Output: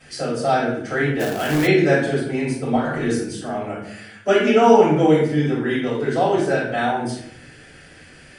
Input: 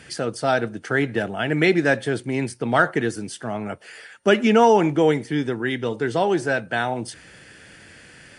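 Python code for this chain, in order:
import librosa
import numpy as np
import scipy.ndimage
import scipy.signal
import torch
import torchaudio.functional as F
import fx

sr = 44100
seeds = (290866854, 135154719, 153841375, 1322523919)

y = fx.over_compress(x, sr, threshold_db=-24.0, ratio=-1.0, at=(2.75, 3.16))
y = fx.room_shoebox(y, sr, seeds[0], volume_m3=140.0, walls='mixed', distance_m=5.4)
y = fx.quant_companded(y, sr, bits=4, at=(1.19, 1.66), fade=0.02)
y = y * 10.0 ** (-14.0 / 20.0)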